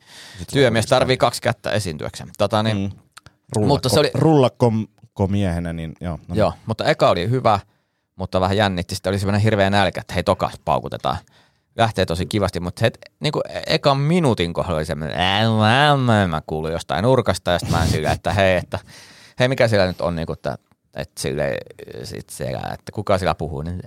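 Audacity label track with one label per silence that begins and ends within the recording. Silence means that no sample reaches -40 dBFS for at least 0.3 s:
7.620000	8.180000	silence
11.280000	11.760000	silence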